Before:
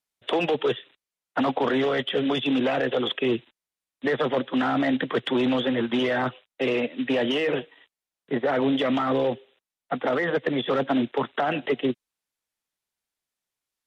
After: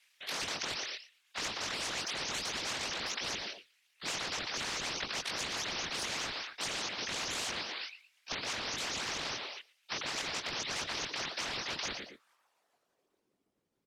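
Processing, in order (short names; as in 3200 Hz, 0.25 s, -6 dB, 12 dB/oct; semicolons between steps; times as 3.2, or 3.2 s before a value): repeated pitch sweeps +9.5 st, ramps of 0.208 s; high shelf 4300 Hz +11 dB; limiter -18.5 dBFS, peak gain reduction 7 dB; chorus voices 2, 0.61 Hz, delay 22 ms, depth 2 ms; band-pass sweep 2300 Hz -> 260 Hz, 11.78–13.49; whisperiser; feedback echo 0.116 s, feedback 23%, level -22 dB; spectral compressor 10:1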